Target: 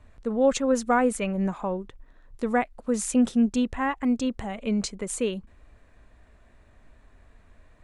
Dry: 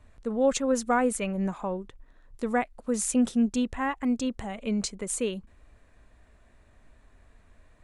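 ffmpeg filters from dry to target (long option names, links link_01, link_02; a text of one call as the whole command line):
ffmpeg -i in.wav -af "highshelf=frequency=6700:gain=-6.5,volume=2.5dB" out.wav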